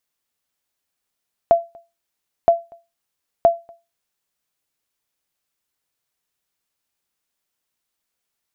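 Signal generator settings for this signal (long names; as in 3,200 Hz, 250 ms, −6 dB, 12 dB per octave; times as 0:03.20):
ping with an echo 678 Hz, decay 0.25 s, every 0.97 s, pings 3, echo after 0.24 s, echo −30 dB −4.5 dBFS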